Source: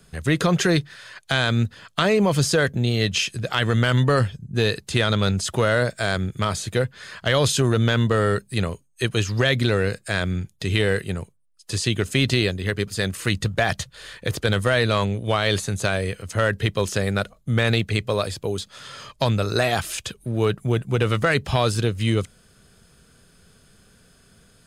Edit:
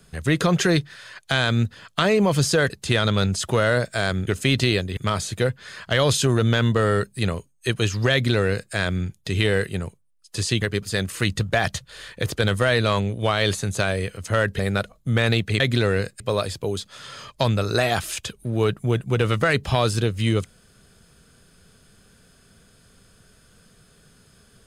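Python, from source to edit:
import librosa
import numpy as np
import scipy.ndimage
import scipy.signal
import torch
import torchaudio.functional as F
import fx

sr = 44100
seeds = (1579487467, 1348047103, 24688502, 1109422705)

y = fx.edit(x, sr, fx.cut(start_s=2.7, length_s=2.05),
    fx.duplicate(start_s=9.48, length_s=0.6, to_s=18.01),
    fx.move(start_s=11.97, length_s=0.7, to_s=6.32),
    fx.cut(start_s=16.64, length_s=0.36), tone=tone)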